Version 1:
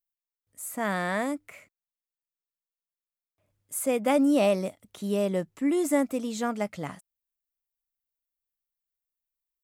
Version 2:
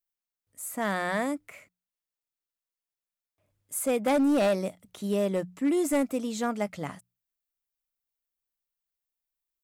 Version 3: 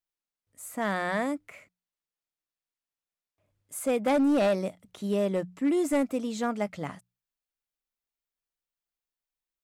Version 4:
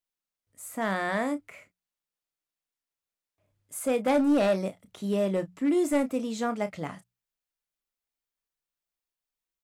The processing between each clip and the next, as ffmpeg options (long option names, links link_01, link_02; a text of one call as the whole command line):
ffmpeg -i in.wav -af "bandreject=frequency=60:width_type=h:width=6,bandreject=frequency=120:width_type=h:width=6,bandreject=frequency=180:width_type=h:width=6,asoftclip=type=hard:threshold=-20dB" out.wav
ffmpeg -i in.wav -af "highshelf=frequency=8100:gain=-8.5" out.wav
ffmpeg -i in.wav -filter_complex "[0:a]asplit=2[link_01][link_02];[link_02]adelay=31,volume=-11dB[link_03];[link_01][link_03]amix=inputs=2:normalize=0" out.wav